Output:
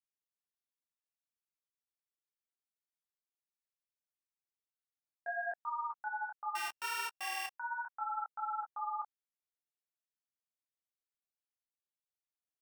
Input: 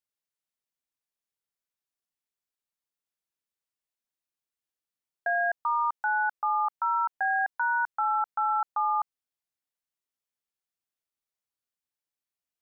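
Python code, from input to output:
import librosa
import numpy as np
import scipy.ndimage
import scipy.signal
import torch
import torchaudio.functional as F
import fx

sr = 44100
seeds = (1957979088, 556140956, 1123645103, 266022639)

y = fx.sample_sort(x, sr, block=16, at=(6.55, 7.53))
y = fx.detune_double(y, sr, cents=25)
y = y * 10.0 ** (-8.5 / 20.0)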